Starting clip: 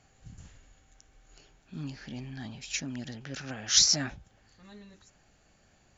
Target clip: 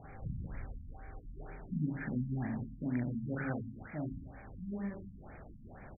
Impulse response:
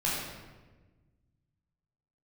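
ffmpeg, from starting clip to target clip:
-af "acompressor=threshold=-52dB:ratio=2.5,aecho=1:1:40|90|152.5|230.6|328.3:0.631|0.398|0.251|0.158|0.1,afftfilt=real='re*lt(b*sr/1024,260*pow(2500/260,0.5+0.5*sin(2*PI*2.1*pts/sr)))':imag='im*lt(b*sr/1024,260*pow(2500/260,0.5+0.5*sin(2*PI*2.1*pts/sr)))':win_size=1024:overlap=0.75,volume=12.5dB"

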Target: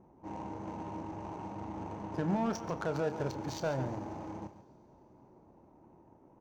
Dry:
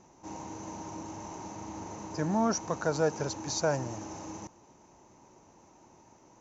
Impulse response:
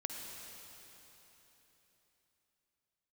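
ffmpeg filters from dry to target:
-filter_complex "[0:a]highshelf=frequency=4100:gain=5.5,alimiter=limit=-22.5dB:level=0:latency=1:release=79,asoftclip=type=tanh:threshold=-17.5dB,adynamicsmooth=sensitivity=5:basefreq=730,asplit=2[link_01][link_02];[link_02]adelay=30,volume=-11.5dB[link_03];[link_01][link_03]amix=inputs=2:normalize=0,aecho=1:1:138:0.237,asplit=2[link_04][link_05];[1:a]atrim=start_sample=2205,highshelf=frequency=4800:gain=10[link_06];[link_05][link_06]afir=irnorm=-1:irlink=0,volume=-20dB[link_07];[link_04][link_07]amix=inputs=2:normalize=0"

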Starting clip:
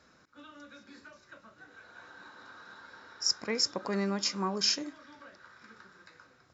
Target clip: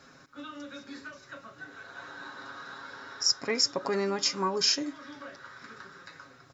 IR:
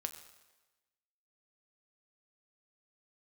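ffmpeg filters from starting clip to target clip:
-filter_complex "[0:a]aecho=1:1:7.3:0.6,asplit=2[link_01][link_02];[link_02]acompressor=threshold=-40dB:ratio=6,volume=1dB[link_03];[link_01][link_03]amix=inputs=2:normalize=0"

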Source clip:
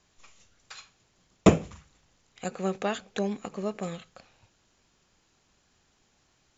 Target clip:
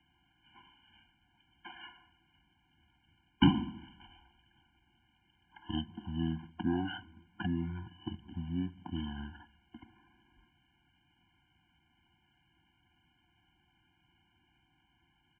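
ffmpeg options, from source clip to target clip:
ffmpeg -i in.wav -filter_complex "[0:a]highpass=130,acrossover=split=440[link_01][link_02];[link_01]acompressor=threshold=-40dB:ratio=6[link_03];[link_03][link_02]amix=inputs=2:normalize=0,asetrate=18846,aresample=44100,afftfilt=real='re*eq(mod(floor(b*sr/1024/350),2),0)':imag='im*eq(mod(floor(b*sr/1024/350),2),0)':win_size=1024:overlap=0.75,volume=-1dB" out.wav

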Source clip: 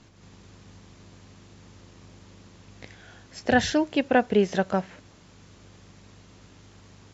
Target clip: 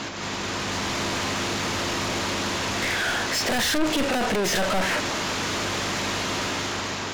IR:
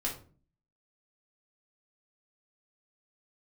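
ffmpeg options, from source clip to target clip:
-filter_complex "[0:a]dynaudnorm=framelen=200:gausssize=7:maxgain=6dB,asplit=2[link_01][link_02];[link_02]highpass=frequency=720:poles=1,volume=27dB,asoftclip=type=tanh:threshold=-17.5dB[link_03];[link_01][link_03]amix=inputs=2:normalize=0,lowpass=frequency=4200:poles=1,volume=-6dB,asoftclip=type=tanh:threshold=-31.5dB,asplit=2[link_04][link_05];[1:a]atrim=start_sample=2205[link_06];[link_05][link_06]afir=irnorm=-1:irlink=0,volume=-12.5dB[link_07];[link_04][link_07]amix=inputs=2:normalize=0,volume=7.5dB"

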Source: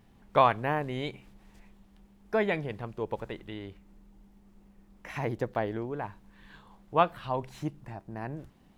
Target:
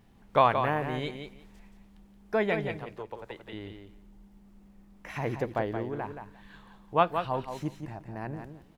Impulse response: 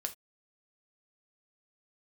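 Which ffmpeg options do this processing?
-filter_complex "[0:a]asettb=1/sr,asplit=3[link_01][link_02][link_03];[link_01]atrim=end=2.754[link_04];[link_02]atrim=start=2.75:end=3.53,asetpts=PTS-STARTPTS,afade=type=in:duration=0.004:curve=qsin,afade=type=out:start_time=0.776:duration=0.004:curve=qsin,acrossover=split=96|400[link_05][link_06][link_07];[link_05]acompressor=threshold=-59dB:ratio=4[link_08];[link_06]acompressor=threshold=-52dB:ratio=4[link_09];[link_07]acompressor=threshold=-38dB:ratio=4[link_10];[link_08][link_09][link_10]amix=inputs=3:normalize=0[link_11];[link_03]atrim=start=3.526[link_12];[link_04][link_11]acrossfade=duration=0.004:curve1=hsin:curve2=qsin[link_13];[link_13][link_12]acrossfade=duration=0.004:curve1=qsin:curve2=hsin,asplit=2[link_14][link_15];[link_15]aecho=0:1:175|350|525:0.422|0.0675|0.0108[link_16];[link_14][link_16]amix=inputs=2:normalize=0"

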